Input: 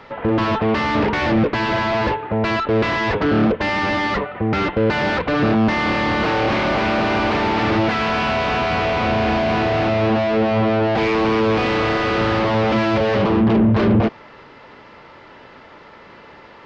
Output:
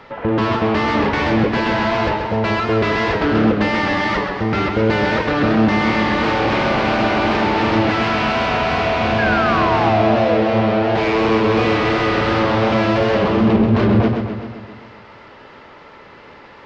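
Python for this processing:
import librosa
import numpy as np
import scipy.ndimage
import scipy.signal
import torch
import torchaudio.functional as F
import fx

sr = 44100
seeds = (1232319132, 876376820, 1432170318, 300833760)

y = fx.spec_paint(x, sr, seeds[0], shape='fall', start_s=9.18, length_s=1.17, low_hz=480.0, high_hz=1700.0, level_db=-21.0)
y = fx.echo_warbled(y, sr, ms=130, feedback_pct=61, rate_hz=2.8, cents=106, wet_db=-6.0)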